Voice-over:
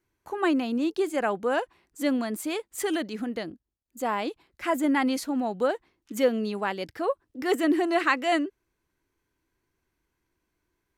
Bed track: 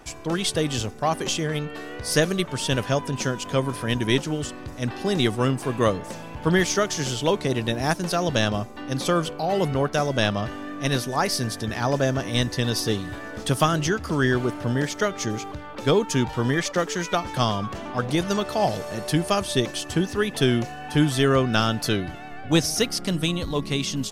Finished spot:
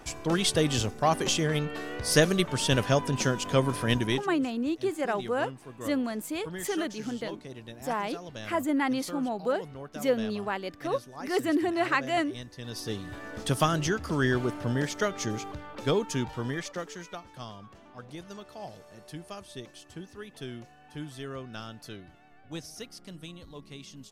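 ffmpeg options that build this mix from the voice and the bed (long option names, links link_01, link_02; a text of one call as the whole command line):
ffmpeg -i stem1.wav -i stem2.wav -filter_complex "[0:a]adelay=3850,volume=-3dB[link_01];[1:a]volume=13.5dB,afade=type=out:start_time=3.93:duration=0.35:silence=0.125893,afade=type=in:start_time=12.57:duration=0.78:silence=0.188365,afade=type=out:start_time=15.51:duration=1.76:silence=0.177828[link_02];[link_01][link_02]amix=inputs=2:normalize=0" out.wav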